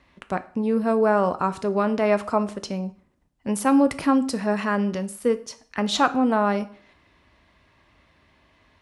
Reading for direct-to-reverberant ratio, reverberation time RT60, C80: 11.0 dB, 0.50 s, 21.0 dB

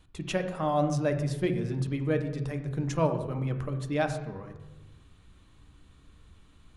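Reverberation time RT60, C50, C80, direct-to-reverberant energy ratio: 1.1 s, 9.0 dB, 11.5 dB, 6.5 dB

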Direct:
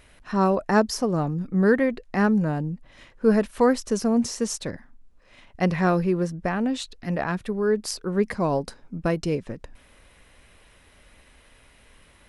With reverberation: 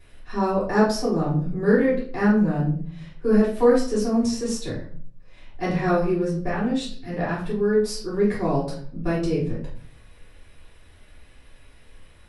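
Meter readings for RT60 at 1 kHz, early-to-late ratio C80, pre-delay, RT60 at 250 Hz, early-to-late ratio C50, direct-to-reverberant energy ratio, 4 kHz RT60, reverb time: 0.45 s, 10.0 dB, 3 ms, 0.75 s, 5.0 dB, -8.5 dB, 0.35 s, 0.50 s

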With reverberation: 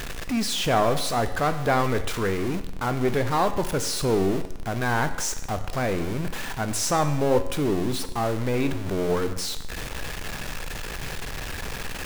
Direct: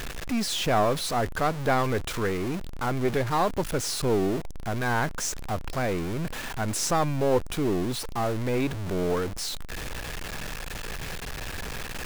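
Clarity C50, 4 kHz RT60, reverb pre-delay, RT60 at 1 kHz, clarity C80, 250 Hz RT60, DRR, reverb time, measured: 11.5 dB, 0.85 s, 11 ms, 0.90 s, 13.5 dB, 0.90 s, 9.0 dB, 0.90 s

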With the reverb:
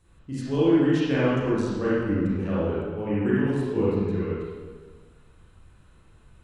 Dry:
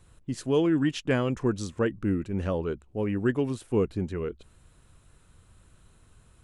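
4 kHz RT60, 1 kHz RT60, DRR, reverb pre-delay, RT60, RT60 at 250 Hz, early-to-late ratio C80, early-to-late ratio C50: 1.2 s, 1.5 s, -9.5 dB, 30 ms, 1.5 s, 1.5 s, -1.0 dB, -5.0 dB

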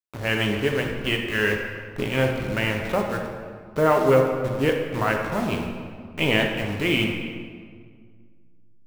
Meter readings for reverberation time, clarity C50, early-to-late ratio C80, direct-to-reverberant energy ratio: 1.9 s, 4.0 dB, 5.5 dB, 1.5 dB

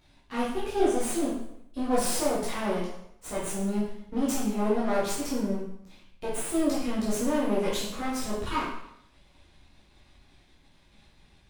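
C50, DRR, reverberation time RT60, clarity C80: 2.5 dB, -8.5 dB, 0.75 s, 5.5 dB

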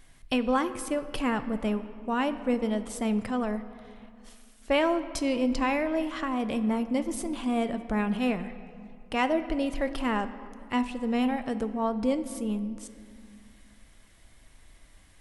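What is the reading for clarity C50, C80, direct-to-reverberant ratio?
12.5 dB, 13.5 dB, 10.0 dB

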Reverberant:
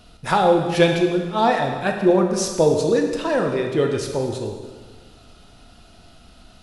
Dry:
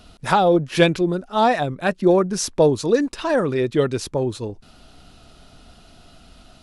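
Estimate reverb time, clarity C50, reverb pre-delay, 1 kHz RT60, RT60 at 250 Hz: 1.5 s, 5.0 dB, 5 ms, 1.5 s, 1.6 s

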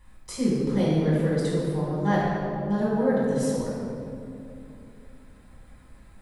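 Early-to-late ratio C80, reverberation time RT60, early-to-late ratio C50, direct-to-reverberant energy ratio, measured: -0.5 dB, 2.7 s, -2.0 dB, -8.5 dB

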